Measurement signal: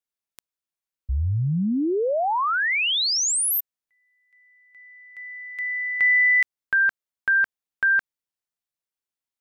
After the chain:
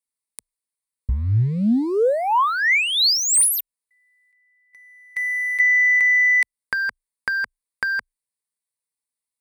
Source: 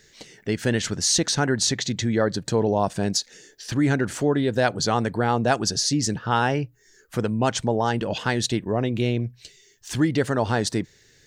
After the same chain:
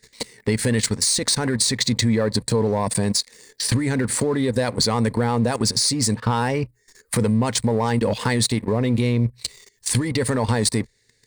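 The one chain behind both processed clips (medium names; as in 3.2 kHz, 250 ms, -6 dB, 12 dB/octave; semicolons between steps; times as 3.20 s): level held to a coarse grid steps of 14 dB; peaking EQ 9.9 kHz +11 dB 0.78 oct; waveshaping leveller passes 2; compression 6:1, threshold -26 dBFS; rippled EQ curve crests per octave 0.95, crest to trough 8 dB; trim +7 dB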